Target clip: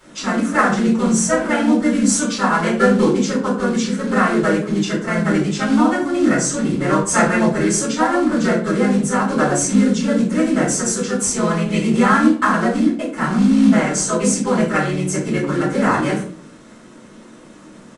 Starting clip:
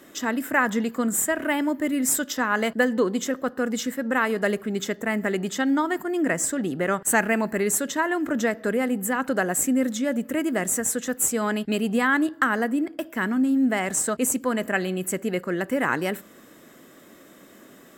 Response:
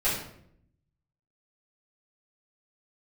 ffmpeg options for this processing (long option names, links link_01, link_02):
-filter_complex "[0:a]asplit=2[link_01][link_02];[link_02]asetrate=35002,aresample=44100,atempo=1.25992,volume=-1dB[link_03];[link_01][link_03]amix=inputs=2:normalize=0,acrusher=bits=4:mode=log:mix=0:aa=0.000001,aresample=22050,aresample=44100[link_04];[1:a]atrim=start_sample=2205,asetrate=74970,aresample=44100[link_05];[link_04][link_05]afir=irnorm=-1:irlink=0,volume=-3dB"